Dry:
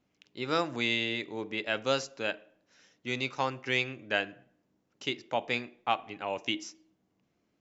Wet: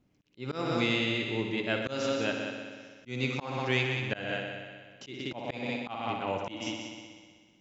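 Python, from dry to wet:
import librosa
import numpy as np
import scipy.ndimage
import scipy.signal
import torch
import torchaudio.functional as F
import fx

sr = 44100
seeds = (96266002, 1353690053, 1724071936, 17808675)

p1 = fx.low_shelf(x, sr, hz=280.0, db=12.0)
p2 = p1 + fx.echo_heads(p1, sr, ms=62, heads='all three', feedback_pct=58, wet_db=-10.0, dry=0)
p3 = fx.rev_spring(p2, sr, rt60_s=1.7, pass_ms=(40,), chirp_ms=30, drr_db=12.0)
p4 = fx.auto_swell(p3, sr, attack_ms=190.0)
y = p4 * librosa.db_to_amplitude(-1.5)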